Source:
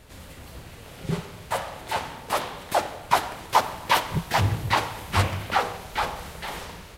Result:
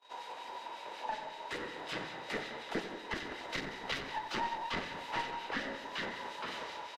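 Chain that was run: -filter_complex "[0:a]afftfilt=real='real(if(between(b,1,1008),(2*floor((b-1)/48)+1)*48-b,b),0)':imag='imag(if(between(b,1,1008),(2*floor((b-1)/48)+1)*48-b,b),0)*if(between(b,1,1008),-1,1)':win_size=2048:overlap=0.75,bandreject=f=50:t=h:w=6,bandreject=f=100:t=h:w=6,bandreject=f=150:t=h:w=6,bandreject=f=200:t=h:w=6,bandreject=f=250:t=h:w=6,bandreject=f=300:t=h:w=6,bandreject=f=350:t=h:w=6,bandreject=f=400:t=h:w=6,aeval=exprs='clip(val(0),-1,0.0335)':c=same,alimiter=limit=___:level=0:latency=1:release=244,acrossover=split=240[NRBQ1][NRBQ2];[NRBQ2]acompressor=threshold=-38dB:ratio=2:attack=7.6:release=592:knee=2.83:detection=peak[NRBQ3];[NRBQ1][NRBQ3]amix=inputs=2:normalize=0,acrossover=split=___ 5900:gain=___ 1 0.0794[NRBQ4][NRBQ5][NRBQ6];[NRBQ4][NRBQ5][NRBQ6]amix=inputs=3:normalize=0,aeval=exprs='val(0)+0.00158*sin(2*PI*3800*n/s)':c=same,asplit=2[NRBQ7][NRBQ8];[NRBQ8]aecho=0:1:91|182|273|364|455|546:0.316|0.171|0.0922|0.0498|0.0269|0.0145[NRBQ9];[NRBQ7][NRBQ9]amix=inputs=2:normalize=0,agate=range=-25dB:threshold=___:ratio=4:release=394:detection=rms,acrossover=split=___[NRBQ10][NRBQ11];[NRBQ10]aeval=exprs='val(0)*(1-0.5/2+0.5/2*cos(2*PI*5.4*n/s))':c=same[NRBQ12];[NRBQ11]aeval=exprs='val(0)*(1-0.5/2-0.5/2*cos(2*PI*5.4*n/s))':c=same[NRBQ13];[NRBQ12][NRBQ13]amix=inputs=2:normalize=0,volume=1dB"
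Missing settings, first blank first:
-9dB, 280, 0.0891, -45dB, 1800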